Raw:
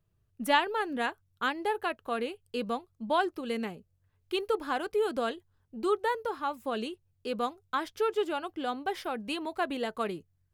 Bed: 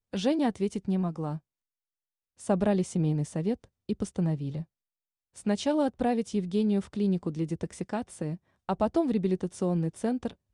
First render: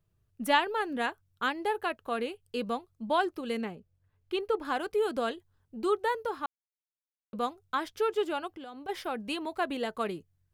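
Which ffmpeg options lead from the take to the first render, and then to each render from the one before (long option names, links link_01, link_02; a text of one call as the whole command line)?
ffmpeg -i in.wav -filter_complex "[0:a]asettb=1/sr,asplit=3[link_01][link_02][link_03];[link_01]atrim=end=3.614[link_04];[link_02]atrim=start=3.61:end=4.65,asetpts=PTS-STARTPTS,afade=type=in:duration=0.004:curve=qsin,afade=type=out:start_time=1.036:duration=0.004:curve=qsin,highshelf=frequency=4800:gain=-10[link_05];[link_03]atrim=start=4.646[link_06];[link_04][link_05]acrossfade=duration=0.004:curve1=hsin:curve2=qsin[link_07];[link_07][link_06]acrossfade=duration=0.004:curve1=qsin:curve2=hsin,asplit=3[link_08][link_09][link_10];[link_08]afade=type=out:start_time=8.47:duration=0.02[link_11];[link_09]acompressor=threshold=-40dB:ratio=10:attack=3.2:release=140:knee=1:detection=peak,afade=type=in:start_time=8.47:duration=0.02,afade=type=out:start_time=8.88:duration=0.02[link_12];[link_10]afade=type=in:start_time=8.88:duration=0.02[link_13];[link_11][link_12][link_13]amix=inputs=3:normalize=0,asplit=3[link_14][link_15][link_16];[link_14]atrim=end=6.46,asetpts=PTS-STARTPTS,afade=type=out:start_time=6.456:duration=0.004:curve=hsin[link_17];[link_15]atrim=start=6.46:end=7.33,asetpts=PTS-STARTPTS,volume=0[link_18];[link_16]atrim=start=7.33,asetpts=PTS-STARTPTS,afade=type=in:duration=0.004:curve=hsin[link_19];[link_17][link_18][link_19]concat=n=3:v=0:a=1" out.wav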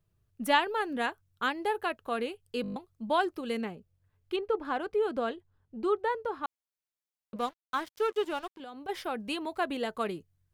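ffmpeg -i in.wav -filter_complex "[0:a]asettb=1/sr,asplit=3[link_01][link_02][link_03];[link_01]atrim=end=4.364[link_04];[link_02]atrim=start=4.36:end=6.44,asetpts=PTS-STARTPTS,afade=type=in:duration=0.004:curve=qsin,afade=type=out:start_time=2.076:duration=0.004:curve=qsin,lowpass=frequency=2100:poles=1[link_05];[link_03]atrim=start=6.436[link_06];[link_04][link_05]acrossfade=duration=0.004:curve1=hsin:curve2=qsin[link_07];[link_07][link_06]acrossfade=duration=0.004:curve1=qsin:curve2=hsin,asettb=1/sr,asplit=3[link_08][link_09][link_10];[link_08]atrim=end=7.364[link_11];[link_09]atrim=start=7.36:end=8.6,asetpts=PTS-STARTPTS,afade=type=in:duration=0.004:curve=qsin,afade=type=out:start_time=1.236:duration=0.004:curve=qsin,aeval=exprs='sgn(val(0))*max(abs(val(0))-0.00531,0)':channel_layout=same[link_12];[link_10]atrim=start=8.596[link_13];[link_11][link_12]acrossfade=duration=0.004:curve1=hsin:curve2=qsin[link_14];[link_14][link_13]acrossfade=duration=0.004:curve1=qsin:curve2=hsin,asplit=8[link_15][link_16][link_17][link_18][link_19][link_20][link_21][link_22];[link_15]atrim=end=2.642[link_23];[link_16]atrim=start=2.618:end=2.642[link_24];[link_17]atrim=start=2.618:end=2.642[link_25];[link_18]atrim=start=2.618:end=2.642[link_26];[link_19]atrim=start=2.618:end=2.642[link_27];[link_20]atrim=start=2.618:end=2.642[link_28];[link_21]atrim=start=2.618:end=2.642[link_29];[link_22]atrim=start=2.758[link_30];[link_23][link_24]acrossfade=duration=0.004:curve1=hsin:curve2=hsin[link_31];[link_31][link_25]acrossfade=duration=0.004:curve1=hsin:curve2=hsin[link_32];[link_32][link_26]acrossfade=duration=0.004:curve1=hsin:curve2=hsin[link_33];[link_33][link_27]acrossfade=duration=0.004:curve1=hsin:curve2=hsin[link_34];[link_34][link_28]acrossfade=duration=0.004:curve1=hsin:curve2=hsin[link_35];[link_35][link_29]acrossfade=duration=0.004:curve1=hsin:curve2=hsin[link_36];[link_36][link_30]acrossfade=duration=0.004:curve1=hsin:curve2=hsin" out.wav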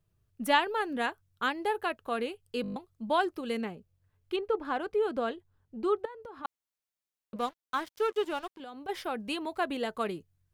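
ffmpeg -i in.wav -filter_complex "[0:a]asettb=1/sr,asplit=3[link_01][link_02][link_03];[link_01]atrim=end=6.054[link_04];[link_02]atrim=start=6.05:end=6.45,asetpts=PTS-STARTPTS,afade=type=in:duration=0.004:curve=qsin,afade=type=out:start_time=0.396:duration=0.004:curve=qsin,acompressor=threshold=-41dB:ratio=8:attack=3.2:release=140:knee=1:detection=peak[link_05];[link_03]atrim=start=6.446[link_06];[link_04][link_05]acrossfade=duration=0.004:curve1=hsin:curve2=qsin[link_07];[link_07][link_06]acrossfade=duration=0.004:curve1=qsin:curve2=hsin" out.wav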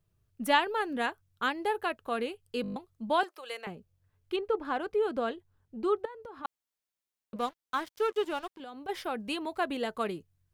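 ffmpeg -i in.wav -filter_complex "[0:a]asettb=1/sr,asplit=3[link_01][link_02][link_03];[link_01]atrim=end=3.234[link_04];[link_02]atrim=start=3.23:end=3.67,asetpts=PTS-STARTPTS,afade=type=in:duration=0.004:curve=qsin,afade=type=out:start_time=0.436:duration=0.004:curve=qsin,highpass=frequency=570:width=0.5412,highpass=frequency=570:width=1.3066[link_05];[link_03]atrim=start=3.666[link_06];[link_04][link_05]acrossfade=duration=0.004:curve1=hsin:curve2=qsin[link_07];[link_07][link_06]acrossfade=duration=0.004:curve1=qsin:curve2=hsin" out.wav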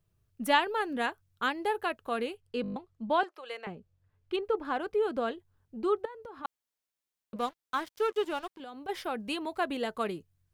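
ffmpeg -i in.wav -filter_complex "[0:a]asettb=1/sr,asplit=3[link_01][link_02][link_03];[link_01]atrim=end=2.404[link_04];[link_02]atrim=start=2.4:end=4.34,asetpts=PTS-STARTPTS,afade=type=in:duration=0.004:curve=qsin,afade=type=out:start_time=1.936:duration=0.004:curve=qsin,aemphasis=mode=reproduction:type=50fm[link_05];[link_03]atrim=start=4.336[link_06];[link_04][link_05]acrossfade=duration=0.004:curve1=hsin:curve2=qsin[link_07];[link_07][link_06]acrossfade=duration=0.004:curve1=qsin:curve2=hsin" out.wav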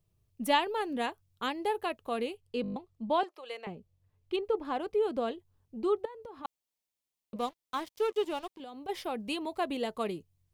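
ffmpeg -i in.wav -af "equalizer=frequency=1500:width=2.5:gain=-9" out.wav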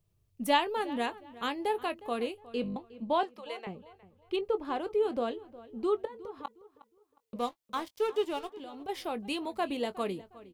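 ffmpeg -i in.wav -filter_complex "[0:a]asplit=2[link_01][link_02];[link_02]adelay=21,volume=-13.5dB[link_03];[link_01][link_03]amix=inputs=2:normalize=0,asplit=2[link_04][link_05];[link_05]adelay=361,lowpass=frequency=3200:poles=1,volume=-18dB,asplit=2[link_06][link_07];[link_07]adelay=361,lowpass=frequency=3200:poles=1,volume=0.3,asplit=2[link_08][link_09];[link_09]adelay=361,lowpass=frequency=3200:poles=1,volume=0.3[link_10];[link_04][link_06][link_08][link_10]amix=inputs=4:normalize=0" out.wav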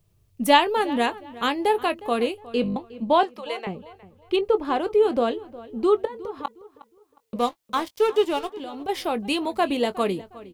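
ffmpeg -i in.wav -af "volume=9.5dB" out.wav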